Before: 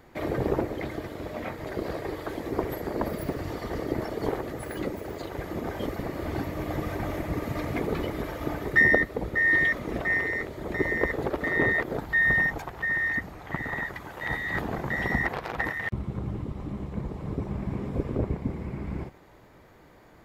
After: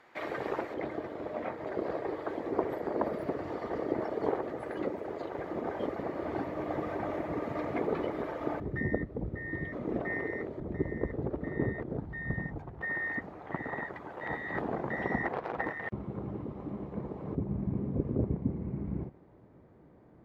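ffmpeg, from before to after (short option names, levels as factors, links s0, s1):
-af "asetnsamples=n=441:p=0,asendcmd='0.74 bandpass f 640;8.6 bandpass f 120;9.73 bandpass f 320;10.6 bandpass f 130;12.81 bandpass f 480;17.35 bandpass f 190',bandpass=f=1700:t=q:w=0.62:csg=0"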